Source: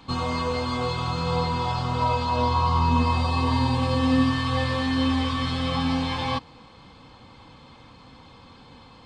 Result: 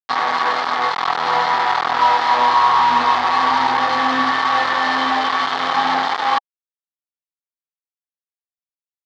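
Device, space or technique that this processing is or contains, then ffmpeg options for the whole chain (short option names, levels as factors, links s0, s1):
hand-held game console: -af "acrusher=bits=3:mix=0:aa=0.000001,highpass=450,equalizer=f=520:t=q:w=4:g=-5,equalizer=f=810:t=q:w=4:g=10,equalizer=f=1200:t=q:w=4:g=7,equalizer=f=1800:t=q:w=4:g=5,equalizer=f=2600:t=q:w=4:g=-7,lowpass=f=4200:w=0.5412,lowpass=f=4200:w=1.3066,volume=1.78"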